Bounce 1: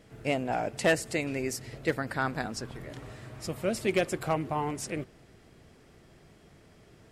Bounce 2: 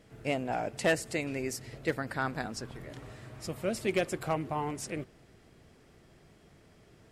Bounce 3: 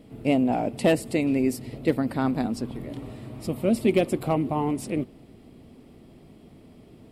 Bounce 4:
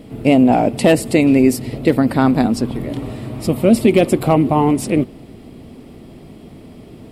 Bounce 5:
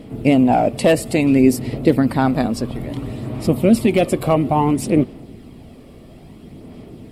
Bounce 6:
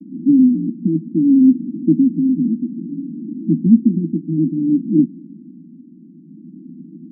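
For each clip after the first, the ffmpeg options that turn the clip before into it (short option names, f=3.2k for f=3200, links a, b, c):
-af "aeval=exprs='0.168*(cos(1*acos(clip(val(0)/0.168,-1,1)))-cos(1*PI/2))+0.00133*(cos(6*acos(clip(val(0)/0.168,-1,1)))-cos(6*PI/2))+0.000944*(cos(8*acos(clip(val(0)/0.168,-1,1)))-cos(8*PI/2))':c=same,volume=-2.5dB"
-af "equalizer=f=250:t=o:w=0.67:g=10,equalizer=f=1.6k:t=o:w=0.67:g=-12,equalizer=f=6.3k:t=o:w=0.67:g=-12,volume=6.5dB"
-af "alimiter=level_in=12.5dB:limit=-1dB:release=50:level=0:latency=1,volume=-1dB"
-af "aphaser=in_gain=1:out_gain=1:delay=1.8:decay=0.33:speed=0.59:type=sinusoidal,volume=-2.5dB"
-af "asuperpass=centerf=230:order=20:qfactor=1.3,volume=3.5dB"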